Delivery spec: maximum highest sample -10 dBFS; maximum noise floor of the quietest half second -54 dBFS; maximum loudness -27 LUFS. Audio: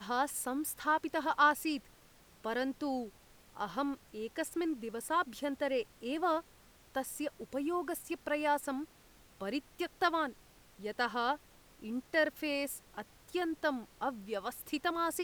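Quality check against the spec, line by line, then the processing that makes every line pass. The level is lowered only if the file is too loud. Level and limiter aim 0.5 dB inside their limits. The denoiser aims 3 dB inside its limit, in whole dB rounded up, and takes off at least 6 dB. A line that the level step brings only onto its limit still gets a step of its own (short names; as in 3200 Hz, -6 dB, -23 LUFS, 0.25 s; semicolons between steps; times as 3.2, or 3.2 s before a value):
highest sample -15.0 dBFS: OK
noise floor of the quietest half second -62 dBFS: OK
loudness -35.5 LUFS: OK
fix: none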